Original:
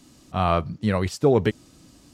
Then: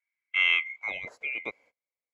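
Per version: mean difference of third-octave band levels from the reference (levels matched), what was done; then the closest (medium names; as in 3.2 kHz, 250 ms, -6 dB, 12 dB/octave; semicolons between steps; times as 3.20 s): 14.0 dB: split-band scrambler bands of 2 kHz; gate -43 dBFS, range -34 dB; bass shelf 100 Hz +9 dB; band-pass sweep 1.7 kHz -> 520 Hz, 0.52–1.05 s; trim +4 dB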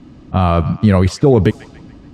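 4.5 dB: on a send: feedback echo behind a band-pass 143 ms, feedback 49%, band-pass 1.6 kHz, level -19 dB; on the sum: level-controlled noise filter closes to 2.2 kHz, open at -17.5 dBFS; bass shelf 360 Hz +8 dB; loudness maximiser +9.5 dB; trim -1 dB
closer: second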